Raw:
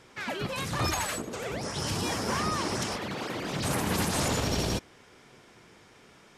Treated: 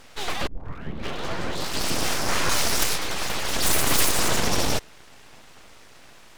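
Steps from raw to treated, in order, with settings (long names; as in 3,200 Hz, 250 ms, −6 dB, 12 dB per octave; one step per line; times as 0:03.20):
0:00.47: tape start 1.51 s
0:02.49–0:04.12: high-shelf EQ 3,000 Hz +8 dB
full-wave rectification
level +8.5 dB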